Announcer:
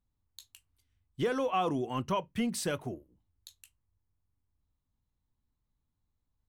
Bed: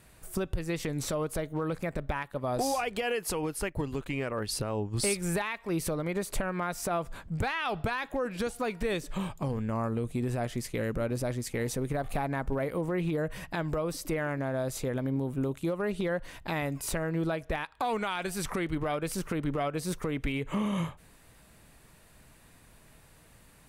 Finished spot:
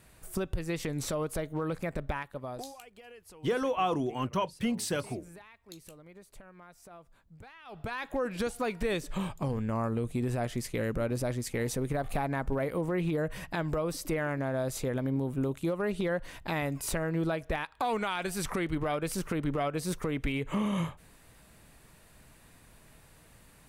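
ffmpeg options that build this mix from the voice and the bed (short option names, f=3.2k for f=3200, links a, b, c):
-filter_complex "[0:a]adelay=2250,volume=1dB[a];[1:a]volume=19.5dB,afade=t=out:st=2.09:d=0.65:silence=0.105925,afade=t=in:st=7.65:d=0.52:silence=0.0944061[b];[a][b]amix=inputs=2:normalize=0"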